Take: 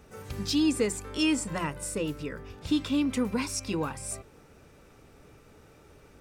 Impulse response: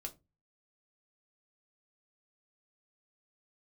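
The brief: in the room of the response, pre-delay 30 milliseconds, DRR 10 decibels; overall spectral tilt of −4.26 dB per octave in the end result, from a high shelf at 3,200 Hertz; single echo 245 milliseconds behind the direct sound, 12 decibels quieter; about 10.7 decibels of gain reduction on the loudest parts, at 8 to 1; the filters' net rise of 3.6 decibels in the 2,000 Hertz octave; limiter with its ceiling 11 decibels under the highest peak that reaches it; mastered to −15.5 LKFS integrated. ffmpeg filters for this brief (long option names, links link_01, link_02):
-filter_complex "[0:a]equalizer=frequency=2000:width_type=o:gain=6.5,highshelf=frequency=3200:gain=-3.5,acompressor=threshold=-32dB:ratio=8,alimiter=level_in=9dB:limit=-24dB:level=0:latency=1,volume=-9dB,aecho=1:1:245:0.251,asplit=2[link_01][link_02];[1:a]atrim=start_sample=2205,adelay=30[link_03];[link_02][link_03]afir=irnorm=-1:irlink=0,volume=-7dB[link_04];[link_01][link_04]amix=inputs=2:normalize=0,volume=25.5dB"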